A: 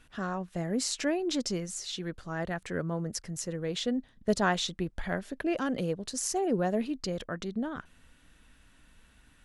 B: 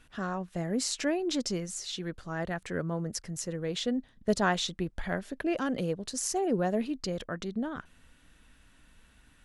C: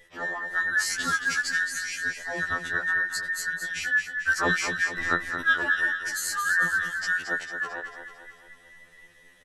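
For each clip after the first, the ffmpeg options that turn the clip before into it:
-af anull
-filter_complex "[0:a]afftfilt=real='real(if(between(b,1,1012),(2*floor((b-1)/92)+1)*92-b,b),0)':imag='imag(if(between(b,1,1012),(2*floor((b-1)/92)+1)*92-b,b),0)*if(between(b,1,1012),-1,1)':win_size=2048:overlap=0.75,asplit=2[s0][s1];[s1]aecho=0:1:223|446|669|892|1115|1338:0.398|0.199|0.0995|0.0498|0.0249|0.0124[s2];[s0][s2]amix=inputs=2:normalize=0,afftfilt=real='re*2*eq(mod(b,4),0)':imag='im*2*eq(mod(b,4),0)':win_size=2048:overlap=0.75,volume=1.78"

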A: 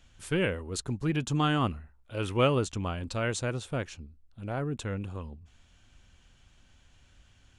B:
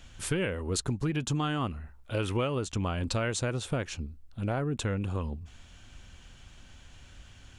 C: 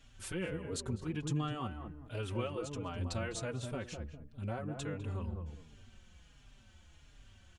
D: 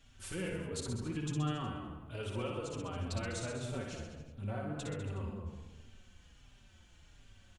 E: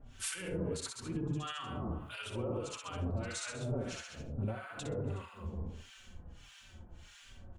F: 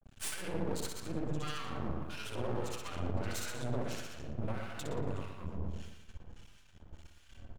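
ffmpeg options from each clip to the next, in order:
-af "acompressor=threshold=0.0178:ratio=10,volume=2.66"
-filter_complex "[0:a]asplit=2[s0][s1];[s1]adelay=203,lowpass=f=820:p=1,volume=0.631,asplit=2[s2][s3];[s3]adelay=203,lowpass=f=820:p=1,volume=0.34,asplit=2[s4][s5];[s5]adelay=203,lowpass=f=820:p=1,volume=0.34,asplit=2[s6][s7];[s7]adelay=203,lowpass=f=820:p=1,volume=0.34[s8];[s2][s4][s6][s8]amix=inputs=4:normalize=0[s9];[s0][s9]amix=inputs=2:normalize=0,asplit=2[s10][s11];[s11]adelay=4.5,afreqshift=-1.4[s12];[s10][s12]amix=inputs=2:normalize=1,volume=0.501"
-filter_complex "[0:a]bandreject=f=70.45:t=h:w=4,bandreject=f=140.9:t=h:w=4,bandreject=f=211.35:t=h:w=4,bandreject=f=281.8:t=h:w=4,bandreject=f=352.25:t=h:w=4,bandreject=f=422.7:t=h:w=4,bandreject=f=493.15:t=h:w=4,bandreject=f=563.6:t=h:w=4,bandreject=f=634.05:t=h:w=4,bandreject=f=704.5:t=h:w=4,bandreject=f=774.95:t=h:w=4,bandreject=f=845.4:t=h:w=4,bandreject=f=915.85:t=h:w=4,bandreject=f=986.3:t=h:w=4,bandreject=f=1056.75:t=h:w=4,bandreject=f=1127.2:t=h:w=4,bandreject=f=1197.65:t=h:w=4,bandreject=f=1268.1:t=h:w=4,bandreject=f=1338.55:t=h:w=4,bandreject=f=1409:t=h:w=4,bandreject=f=1479.45:t=h:w=4,bandreject=f=1549.9:t=h:w=4,bandreject=f=1620.35:t=h:w=4,bandreject=f=1690.8:t=h:w=4,bandreject=f=1761.25:t=h:w=4,bandreject=f=1831.7:t=h:w=4,bandreject=f=1902.15:t=h:w=4,bandreject=f=1972.6:t=h:w=4,bandreject=f=2043.05:t=h:w=4,bandreject=f=2113.5:t=h:w=4,bandreject=f=2183.95:t=h:w=4,bandreject=f=2254.4:t=h:w=4,bandreject=f=2324.85:t=h:w=4,bandreject=f=2395.3:t=h:w=4,bandreject=f=2465.75:t=h:w=4,bandreject=f=2536.2:t=h:w=4,bandreject=f=2606.65:t=h:w=4,asplit=2[s0][s1];[s1]aecho=0:1:60|126|198.6|278.5|366.3:0.631|0.398|0.251|0.158|0.1[s2];[s0][s2]amix=inputs=2:normalize=0,volume=0.794"
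-filter_complex "[0:a]bandreject=f=50:t=h:w=6,bandreject=f=100:t=h:w=6,bandreject=f=150:t=h:w=6,bandreject=f=200:t=h:w=6,bandreject=f=250:t=h:w=6,bandreject=f=300:t=h:w=6,alimiter=level_in=4.47:limit=0.0631:level=0:latency=1:release=173,volume=0.224,acrossover=split=1000[s0][s1];[s0]aeval=exprs='val(0)*(1-1/2+1/2*cos(2*PI*1.6*n/s))':c=same[s2];[s1]aeval=exprs='val(0)*(1-1/2-1/2*cos(2*PI*1.6*n/s))':c=same[s3];[s2][s3]amix=inputs=2:normalize=0,volume=3.76"
-filter_complex "[0:a]agate=range=0.0224:threshold=0.00355:ratio=3:detection=peak,aeval=exprs='max(val(0),0)':c=same,asplit=2[s0][s1];[s1]adelay=117,lowpass=f=2800:p=1,volume=0.501,asplit=2[s2][s3];[s3]adelay=117,lowpass=f=2800:p=1,volume=0.37,asplit=2[s4][s5];[s5]adelay=117,lowpass=f=2800:p=1,volume=0.37,asplit=2[s6][s7];[s7]adelay=117,lowpass=f=2800:p=1,volume=0.37[s8];[s0][s2][s4][s6][s8]amix=inputs=5:normalize=0,volume=1.5"

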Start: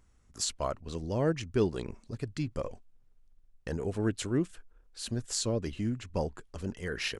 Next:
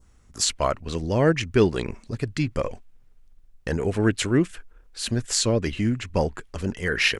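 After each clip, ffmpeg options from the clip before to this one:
-af "adynamicequalizer=threshold=0.00224:dfrequency=2100:dqfactor=1.2:tfrequency=2100:tqfactor=1.2:attack=5:release=100:ratio=0.375:range=3.5:mode=boostabove:tftype=bell,volume=2.66"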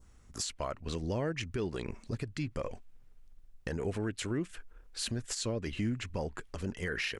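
-af "acompressor=threshold=0.02:ratio=1.5,alimiter=limit=0.075:level=0:latency=1:release=151,volume=0.75"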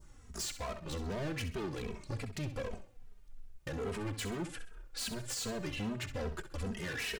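-filter_complex "[0:a]asoftclip=type=hard:threshold=0.0106,asplit=2[s0][s1];[s1]aecho=0:1:65|130|195|260:0.282|0.11|0.0429|0.0167[s2];[s0][s2]amix=inputs=2:normalize=0,asplit=2[s3][s4];[s4]adelay=2.8,afreqshift=-2.5[s5];[s3][s5]amix=inputs=2:normalize=1,volume=2.11"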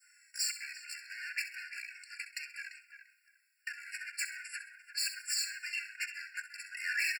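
-filter_complex "[0:a]asplit=2[s0][s1];[s1]adelay=344,lowpass=f=1200:p=1,volume=0.562,asplit=2[s2][s3];[s3]adelay=344,lowpass=f=1200:p=1,volume=0.32,asplit=2[s4][s5];[s5]adelay=344,lowpass=f=1200:p=1,volume=0.32,asplit=2[s6][s7];[s7]adelay=344,lowpass=f=1200:p=1,volume=0.32[s8];[s2][s4][s6][s8]amix=inputs=4:normalize=0[s9];[s0][s9]amix=inputs=2:normalize=0,afftfilt=real='re*eq(mod(floor(b*sr/1024/1400),2),1)':imag='im*eq(mod(floor(b*sr/1024/1400),2),1)':win_size=1024:overlap=0.75,volume=2.37"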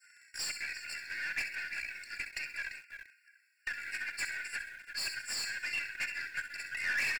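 -filter_complex "[0:a]asplit=2[s0][s1];[s1]highpass=f=720:p=1,volume=6.31,asoftclip=type=tanh:threshold=0.0841[s2];[s0][s2]amix=inputs=2:normalize=0,lowpass=f=3000:p=1,volume=0.501,asplit=2[s3][s4];[s4]acrusher=bits=5:dc=4:mix=0:aa=0.000001,volume=0.355[s5];[s3][s5]amix=inputs=2:normalize=0,volume=0.631"

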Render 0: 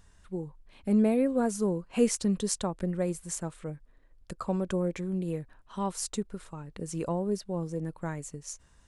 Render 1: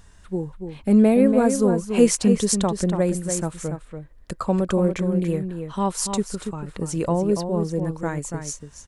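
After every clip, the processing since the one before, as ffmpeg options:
-filter_complex "[0:a]asplit=2[s0][s1];[s1]adelay=285.7,volume=0.447,highshelf=f=4000:g=-6.43[s2];[s0][s2]amix=inputs=2:normalize=0,volume=2.66"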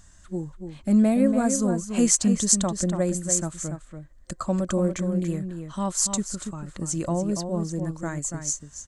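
-af "superequalizer=7b=0.355:9b=0.631:12b=0.708:14b=1.41:15b=2.82,volume=0.708"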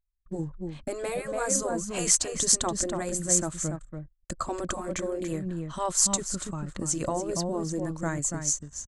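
-af "afftfilt=real='re*lt(hypot(re,im),0.355)':imag='im*lt(hypot(re,im),0.355)':win_size=1024:overlap=0.75,agate=range=0.0447:threshold=0.00501:ratio=16:detection=peak,anlmdn=0.00158,volume=1.19"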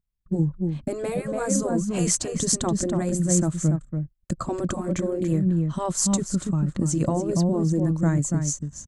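-af "equalizer=f=160:w=0.51:g=14.5,volume=0.794"

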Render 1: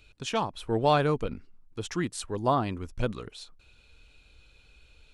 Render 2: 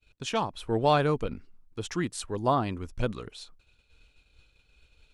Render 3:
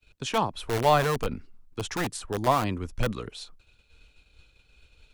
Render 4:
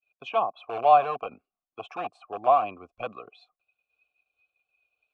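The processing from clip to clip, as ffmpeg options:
-af "agate=range=0.0224:threshold=0.00316:ratio=3:detection=peak"
-filter_complex "[0:a]acrossover=split=170|400|1800[s0][s1][s2][s3];[s1]aeval=exprs='(mod(31.6*val(0)+1,2)-1)/31.6':c=same[s4];[s3]alimiter=level_in=1.41:limit=0.0631:level=0:latency=1:release=200,volume=0.708[s5];[s0][s4][s2][s5]amix=inputs=4:normalize=0,volume=1.5"
-filter_complex "[0:a]asplit=3[s0][s1][s2];[s0]bandpass=f=730:t=q:w=8,volume=1[s3];[s1]bandpass=f=1090:t=q:w=8,volume=0.501[s4];[s2]bandpass=f=2440:t=q:w=8,volume=0.355[s5];[s3][s4][s5]amix=inputs=3:normalize=0,afftdn=nr=15:nf=-58,volume=2.82"

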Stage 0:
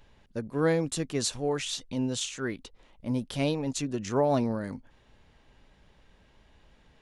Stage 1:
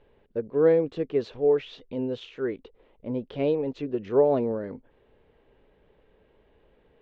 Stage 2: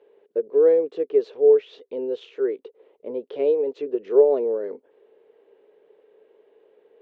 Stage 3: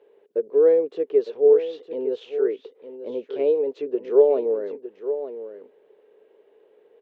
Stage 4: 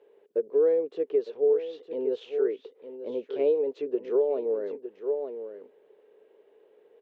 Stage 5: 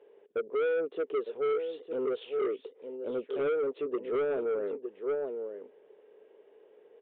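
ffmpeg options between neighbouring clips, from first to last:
-af "lowpass=f=3300:w=0.5412,lowpass=f=3300:w=1.3066,equalizer=f=440:t=o:w=0.91:g=15,volume=0.531"
-filter_complex "[0:a]asplit=2[s0][s1];[s1]acompressor=threshold=0.0316:ratio=6,volume=0.944[s2];[s0][s2]amix=inputs=2:normalize=0,highpass=f=420:t=q:w=4.3,volume=0.398"
-af "aecho=1:1:908:0.282"
-af "alimiter=limit=0.211:level=0:latency=1:release=481,volume=0.75"
-af "aresample=16000,asoftclip=type=tanh:threshold=0.0447,aresample=44100,aresample=8000,aresample=44100,volume=1.12"

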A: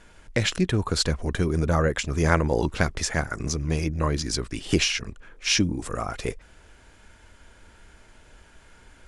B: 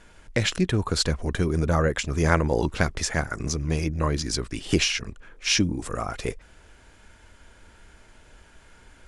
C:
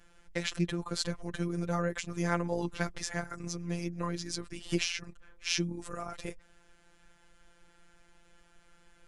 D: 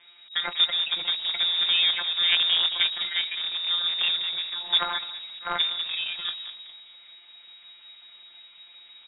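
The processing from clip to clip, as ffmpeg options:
-af anull
-af "afftfilt=real='hypot(re,im)*cos(PI*b)':imag='0':win_size=1024:overlap=0.75,volume=0.501"
-filter_complex "[0:a]asplit=2[s0][s1];[s1]adelay=203,lowpass=f=1100:p=1,volume=0.316,asplit=2[s2][s3];[s3]adelay=203,lowpass=f=1100:p=1,volume=0.37,asplit=2[s4][s5];[s5]adelay=203,lowpass=f=1100:p=1,volume=0.37,asplit=2[s6][s7];[s7]adelay=203,lowpass=f=1100:p=1,volume=0.37[s8];[s0][s2][s4][s6][s8]amix=inputs=5:normalize=0,acrusher=bits=2:mode=log:mix=0:aa=0.000001,lowpass=f=3200:t=q:w=0.5098,lowpass=f=3200:t=q:w=0.6013,lowpass=f=3200:t=q:w=0.9,lowpass=f=3200:t=q:w=2.563,afreqshift=-3800,volume=2.11"

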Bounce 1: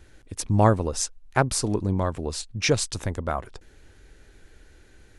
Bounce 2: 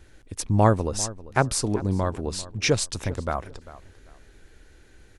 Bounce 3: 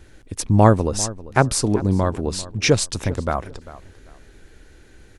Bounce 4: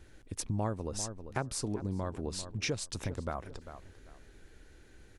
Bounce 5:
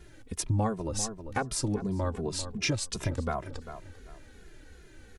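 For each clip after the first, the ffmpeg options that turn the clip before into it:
-filter_complex "[0:a]asplit=2[s0][s1];[s1]adelay=395,lowpass=f=3100:p=1,volume=0.141,asplit=2[s2][s3];[s3]adelay=395,lowpass=f=3100:p=1,volume=0.26[s4];[s0][s2][s4]amix=inputs=3:normalize=0"
-af "equalizer=f=220:t=o:w=2.2:g=2.5,volume=1.58"
-af "acompressor=threshold=0.0562:ratio=3,volume=0.376"
-filter_complex "[0:a]asplit=2[s0][s1];[s1]adelay=2.4,afreqshift=-2.7[s2];[s0][s2]amix=inputs=2:normalize=1,volume=2.51"

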